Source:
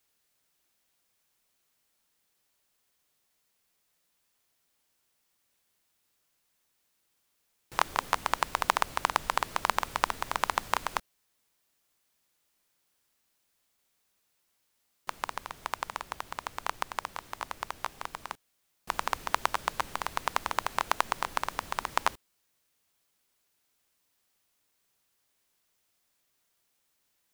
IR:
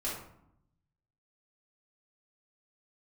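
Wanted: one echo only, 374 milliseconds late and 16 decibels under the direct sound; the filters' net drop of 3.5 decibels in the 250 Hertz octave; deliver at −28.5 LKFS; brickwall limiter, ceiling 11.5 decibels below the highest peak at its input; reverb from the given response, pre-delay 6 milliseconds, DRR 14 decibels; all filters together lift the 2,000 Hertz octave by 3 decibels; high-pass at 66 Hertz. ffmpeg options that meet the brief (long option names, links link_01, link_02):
-filter_complex "[0:a]highpass=66,equalizer=frequency=250:width_type=o:gain=-5,equalizer=frequency=2000:width_type=o:gain=4,alimiter=limit=-12.5dB:level=0:latency=1,aecho=1:1:374:0.158,asplit=2[link_01][link_02];[1:a]atrim=start_sample=2205,adelay=6[link_03];[link_02][link_03]afir=irnorm=-1:irlink=0,volume=-18dB[link_04];[link_01][link_04]amix=inputs=2:normalize=0,volume=8dB"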